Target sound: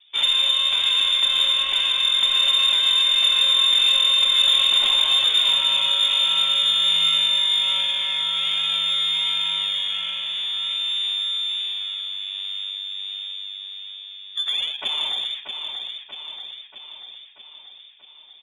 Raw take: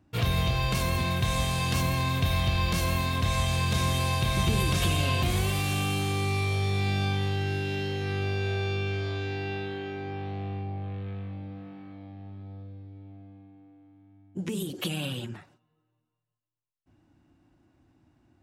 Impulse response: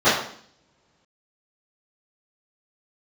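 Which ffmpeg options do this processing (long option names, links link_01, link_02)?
-filter_complex "[0:a]bandreject=frequency=1100:width=7.7,acrossover=split=740|1000[link_01][link_02][link_03];[link_01]acrusher=samples=37:mix=1:aa=0.000001:lfo=1:lforange=37:lforate=1.3[link_04];[link_04][link_02][link_03]amix=inputs=3:normalize=0,lowpass=frequency=3100:width_type=q:width=0.5098,lowpass=frequency=3100:width_type=q:width=0.6013,lowpass=frequency=3100:width_type=q:width=0.9,lowpass=frequency=3100:width_type=q:width=2.563,afreqshift=-3700,aecho=1:1:635|1270|1905|2540|3175|3810|4445|5080:0.447|0.264|0.155|0.0917|0.0541|0.0319|0.0188|0.0111,aexciter=amount=1.8:drive=8.5:freq=2300"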